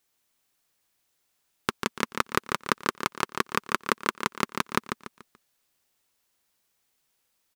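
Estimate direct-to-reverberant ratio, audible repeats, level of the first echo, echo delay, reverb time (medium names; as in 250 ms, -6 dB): no reverb, 4, -6.5 dB, 144 ms, no reverb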